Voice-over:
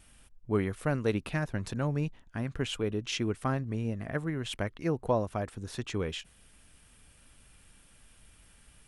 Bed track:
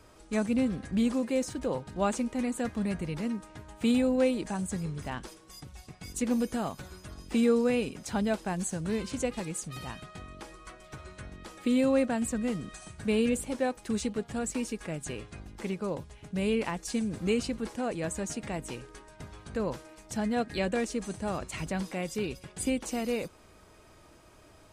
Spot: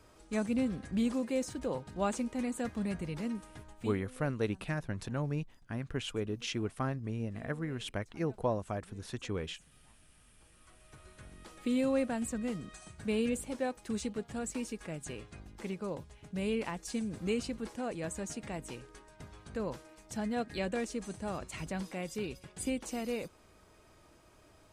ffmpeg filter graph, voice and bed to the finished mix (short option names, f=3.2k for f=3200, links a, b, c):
-filter_complex "[0:a]adelay=3350,volume=-4dB[a];[1:a]volume=19dB,afade=t=out:st=3.6:d=0.36:silence=0.0630957,afade=t=in:st=10.39:d=1.32:silence=0.0707946[b];[a][b]amix=inputs=2:normalize=0"